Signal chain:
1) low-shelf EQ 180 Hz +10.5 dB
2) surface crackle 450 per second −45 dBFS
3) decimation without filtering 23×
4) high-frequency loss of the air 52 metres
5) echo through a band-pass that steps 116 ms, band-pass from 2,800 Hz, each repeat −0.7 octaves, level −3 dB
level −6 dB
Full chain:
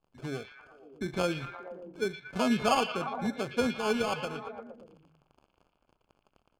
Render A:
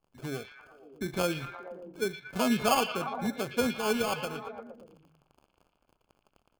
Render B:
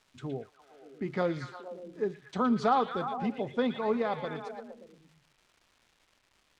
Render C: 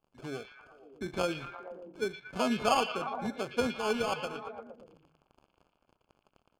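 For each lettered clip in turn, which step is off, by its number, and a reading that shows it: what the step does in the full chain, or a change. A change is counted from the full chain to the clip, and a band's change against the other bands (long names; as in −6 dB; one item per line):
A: 4, 8 kHz band +5.0 dB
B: 3, 4 kHz band −8.5 dB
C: 1, 125 Hz band −4.0 dB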